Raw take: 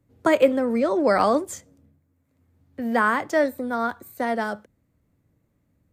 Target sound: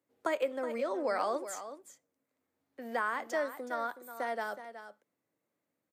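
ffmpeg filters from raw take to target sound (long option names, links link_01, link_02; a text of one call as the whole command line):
ffmpeg -i in.wav -af "highpass=430,acompressor=threshold=-24dB:ratio=2,aecho=1:1:371:0.266,volume=-7.5dB" out.wav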